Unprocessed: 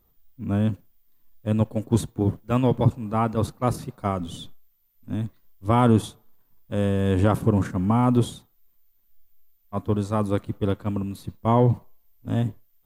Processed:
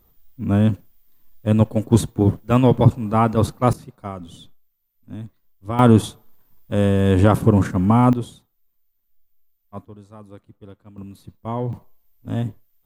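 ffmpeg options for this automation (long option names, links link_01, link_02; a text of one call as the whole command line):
ffmpeg -i in.wav -af "asetnsamples=nb_out_samples=441:pad=0,asendcmd='3.73 volume volume -5.5dB;5.79 volume volume 5.5dB;8.13 volume volume -6dB;9.85 volume volume -18dB;10.98 volume volume -7dB;11.73 volume volume 0dB',volume=6dB" out.wav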